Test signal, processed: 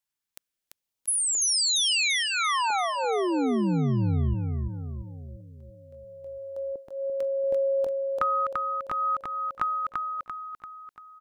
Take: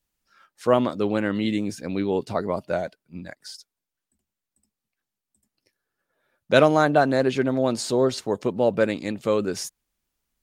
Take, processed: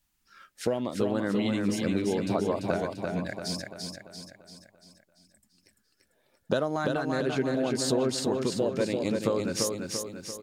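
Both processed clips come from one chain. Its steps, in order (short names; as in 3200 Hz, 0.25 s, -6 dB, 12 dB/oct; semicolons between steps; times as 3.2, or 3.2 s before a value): compressor 12:1, threshold -28 dBFS; LFO notch saw up 0.74 Hz 420–3000 Hz; feedback echo 0.341 s, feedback 51%, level -4 dB; gain +4.5 dB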